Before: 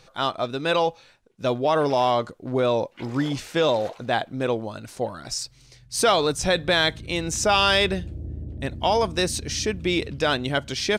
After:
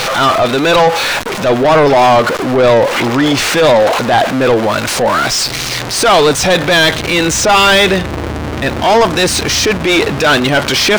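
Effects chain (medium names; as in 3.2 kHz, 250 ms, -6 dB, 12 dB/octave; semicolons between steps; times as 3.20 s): jump at every zero crossing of -28 dBFS; overdrive pedal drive 24 dB, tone 2.9 kHz, clips at -6.5 dBFS; transient shaper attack -5 dB, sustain -1 dB; trim +6 dB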